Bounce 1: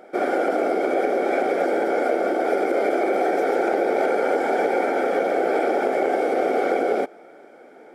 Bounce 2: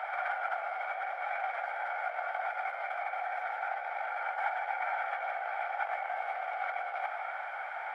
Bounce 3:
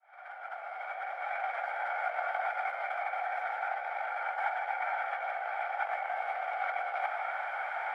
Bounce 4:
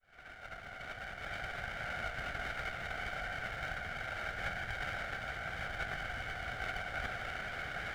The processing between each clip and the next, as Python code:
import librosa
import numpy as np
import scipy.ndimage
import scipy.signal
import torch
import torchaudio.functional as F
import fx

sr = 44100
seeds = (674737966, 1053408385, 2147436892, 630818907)

y1 = fx.curve_eq(x, sr, hz=(1900.0, 2900.0, 5800.0), db=(0, -3, -20))
y1 = fx.over_compress(y1, sr, threshold_db=-32.0, ratio=-1.0)
y1 = scipy.signal.sosfilt(scipy.signal.butter(8, 750.0, 'highpass', fs=sr, output='sos'), y1)
y1 = y1 * 10.0 ** (4.5 / 20.0)
y2 = fx.fade_in_head(y1, sr, length_s=2.25)
y2 = fx.rider(y2, sr, range_db=4, speed_s=2.0)
y2 = y2 * 10.0 ** (1.5 / 20.0)
y3 = fx.lower_of_two(y2, sr, delay_ms=0.55)
y3 = y3 + 10.0 ** (-7.5 / 20.0) * np.pad(y3, (int(1176 * sr / 1000.0), 0))[:len(y3)]
y3 = y3 * 10.0 ** (-3.5 / 20.0)